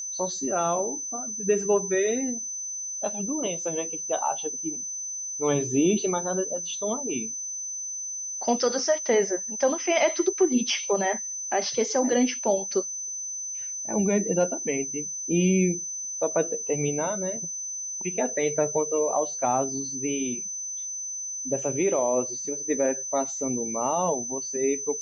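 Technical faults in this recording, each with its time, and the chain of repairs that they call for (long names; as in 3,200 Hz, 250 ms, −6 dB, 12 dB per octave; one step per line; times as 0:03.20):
whistle 6,100 Hz −31 dBFS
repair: notch filter 6,100 Hz, Q 30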